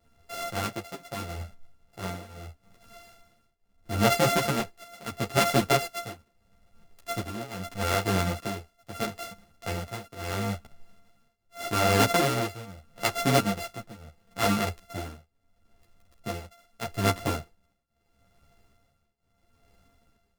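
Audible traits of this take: a buzz of ramps at a fixed pitch in blocks of 64 samples; tremolo triangle 0.77 Hz, depth 95%; a shimmering, thickened sound

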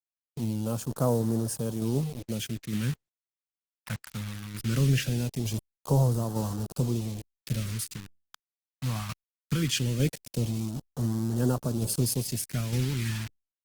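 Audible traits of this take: a quantiser's noise floor 6-bit, dither none; phasing stages 2, 0.2 Hz, lowest notch 410–2200 Hz; tremolo saw down 1.1 Hz, depth 40%; Opus

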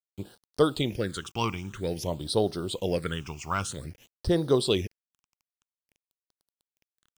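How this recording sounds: a quantiser's noise floor 8-bit, dither none; phasing stages 8, 0.51 Hz, lowest notch 500–2400 Hz

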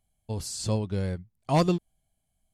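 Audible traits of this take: noise floor -78 dBFS; spectral tilt -6.0 dB/oct

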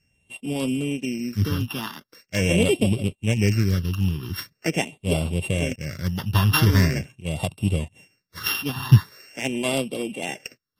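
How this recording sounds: a buzz of ramps at a fixed pitch in blocks of 16 samples; phasing stages 6, 0.43 Hz, lowest notch 570–1700 Hz; AAC

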